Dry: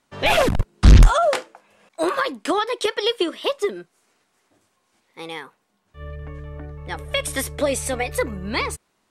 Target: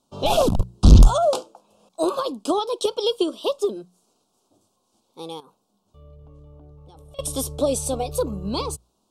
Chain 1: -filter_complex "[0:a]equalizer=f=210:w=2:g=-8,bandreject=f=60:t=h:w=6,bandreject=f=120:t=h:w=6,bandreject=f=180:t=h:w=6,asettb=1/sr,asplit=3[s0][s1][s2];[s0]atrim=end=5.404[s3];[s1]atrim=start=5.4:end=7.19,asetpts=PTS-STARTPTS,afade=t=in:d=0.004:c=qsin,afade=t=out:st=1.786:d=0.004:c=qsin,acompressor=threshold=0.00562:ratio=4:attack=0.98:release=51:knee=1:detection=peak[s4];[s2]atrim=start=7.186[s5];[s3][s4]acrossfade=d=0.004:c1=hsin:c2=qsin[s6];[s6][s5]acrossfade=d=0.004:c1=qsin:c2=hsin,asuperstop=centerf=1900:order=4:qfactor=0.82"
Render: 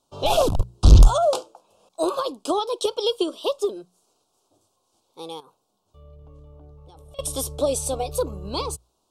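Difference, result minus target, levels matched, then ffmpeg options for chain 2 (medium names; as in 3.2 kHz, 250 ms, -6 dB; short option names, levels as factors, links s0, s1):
250 Hz band -4.0 dB
-filter_complex "[0:a]equalizer=f=210:w=2:g=2.5,bandreject=f=60:t=h:w=6,bandreject=f=120:t=h:w=6,bandreject=f=180:t=h:w=6,asettb=1/sr,asplit=3[s0][s1][s2];[s0]atrim=end=5.404[s3];[s1]atrim=start=5.4:end=7.19,asetpts=PTS-STARTPTS,afade=t=in:d=0.004:c=qsin,afade=t=out:st=1.786:d=0.004:c=qsin,acompressor=threshold=0.00562:ratio=4:attack=0.98:release=51:knee=1:detection=peak[s4];[s2]atrim=start=7.186[s5];[s3][s4]acrossfade=d=0.004:c1=hsin:c2=qsin[s6];[s6][s5]acrossfade=d=0.004:c1=qsin:c2=hsin,asuperstop=centerf=1900:order=4:qfactor=0.82"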